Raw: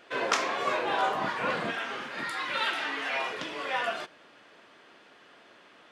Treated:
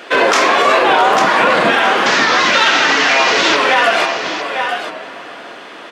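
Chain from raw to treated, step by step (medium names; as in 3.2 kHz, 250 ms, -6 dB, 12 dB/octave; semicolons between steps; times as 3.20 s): 2.06–3.57 s: one-bit delta coder 32 kbps, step -28 dBFS; high-pass 200 Hz 12 dB/octave; in parallel at -5 dB: saturation -22.5 dBFS, distortion -16 dB; on the sum: delay 849 ms -9.5 dB; on a send at -11 dB: reverberation RT60 4.5 s, pre-delay 87 ms; on the sum: loudness maximiser +19 dB; warped record 45 rpm, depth 100 cents; trim -2 dB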